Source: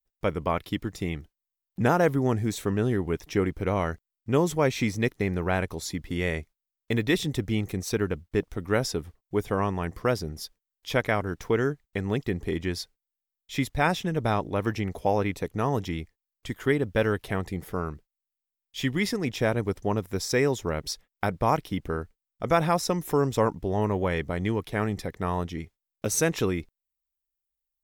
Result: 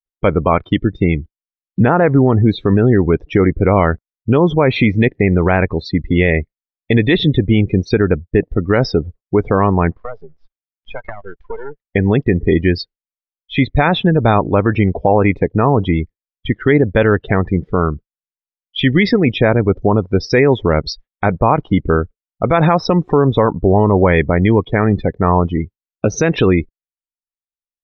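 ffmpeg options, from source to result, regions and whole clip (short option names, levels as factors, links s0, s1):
-filter_complex "[0:a]asettb=1/sr,asplit=3[s0][s1][s2];[s0]atrim=end=9.924[s3];[s1]atrim=start=9.92:end=11.87,asetpts=PTS-STARTPTS,afade=t=in:d=0.004:c=qsin,afade=t=out:st=1.946:d=0.004:c=qsin,acrossover=split=510 3100:gain=0.224 1 0.178[s4][s5][s6];[s4][s5][s6]amix=inputs=3:normalize=0,acompressor=threshold=0.0316:ratio=16:attack=3.2:release=140:knee=1:detection=peak,aeval=exprs='max(val(0),0)':c=same[s7];[s2]atrim=start=11.866[s8];[s3][s7]acrossfade=d=0.004:c1=hsin:c2=qsin[s9];[s9][s8]acrossfade=d=0.004:c1=qsin:c2=hsin,lowpass=f=4500:w=0.5412,lowpass=f=4500:w=1.3066,afftdn=nr=31:nf=-36,alimiter=level_in=7.5:limit=0.891:release=50:level=0:latency=1,volume=0.891"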